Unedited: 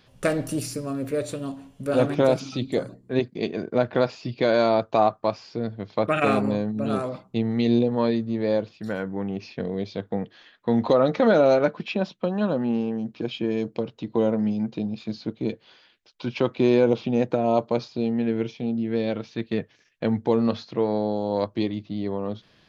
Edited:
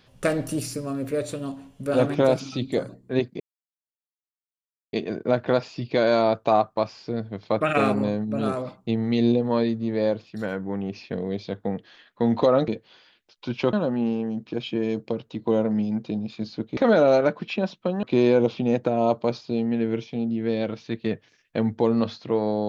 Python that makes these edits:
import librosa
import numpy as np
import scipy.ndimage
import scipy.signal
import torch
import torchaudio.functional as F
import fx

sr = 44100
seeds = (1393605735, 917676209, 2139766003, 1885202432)

y = fx.edit(x, sr, fx.insert_silence(at_s=3.4, length_s=1.53),
    fx.swap(start_s=11.15, length_s=1.26, other_s=15.45, other_length_s=1.05), tone=tone)